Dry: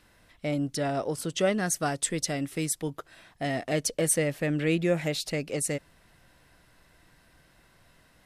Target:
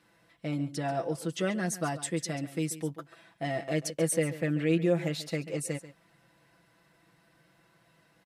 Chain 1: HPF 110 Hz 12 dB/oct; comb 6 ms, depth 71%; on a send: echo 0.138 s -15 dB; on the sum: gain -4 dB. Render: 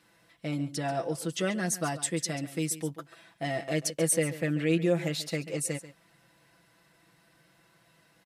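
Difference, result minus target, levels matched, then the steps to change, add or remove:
4000 Hz band +2.5 dB
add after HPF: high shelf 2800 Hz -5.5 dB

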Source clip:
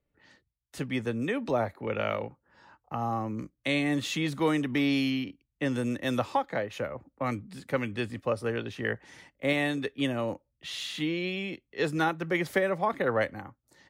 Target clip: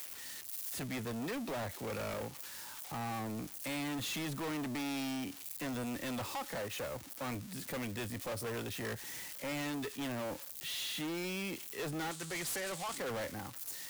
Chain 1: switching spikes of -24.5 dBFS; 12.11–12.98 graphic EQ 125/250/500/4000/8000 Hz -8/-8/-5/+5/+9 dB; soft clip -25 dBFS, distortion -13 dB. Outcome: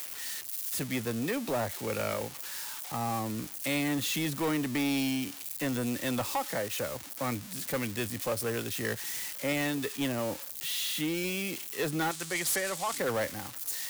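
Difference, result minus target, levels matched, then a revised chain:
soft clip: distortion -8 dB
switching spikes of -24.5 dBFS; 12.11–12.98 graphic EQ 125/250/500/4000/8000 Hz -8/-8/-5/+5/+9 dB; soft clip -36.5 dBFS, distortion -5 dB

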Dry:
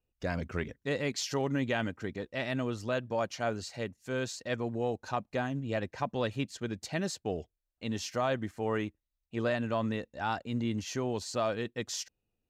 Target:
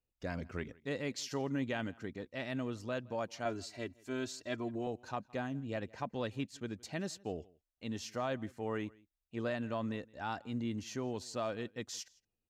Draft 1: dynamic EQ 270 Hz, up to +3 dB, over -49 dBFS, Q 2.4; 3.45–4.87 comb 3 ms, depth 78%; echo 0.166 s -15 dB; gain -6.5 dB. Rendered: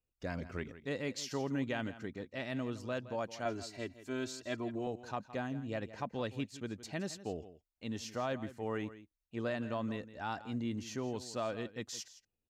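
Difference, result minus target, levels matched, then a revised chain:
echo-to-direct +10 dB
dynamic EQ 270 Hz, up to +3 dB, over -49 dBFS, Q 2.4; 3.45–4.87 comb 3 ms, depth 78%; echo 0.166 s -25 dB; gain -6.5 dB

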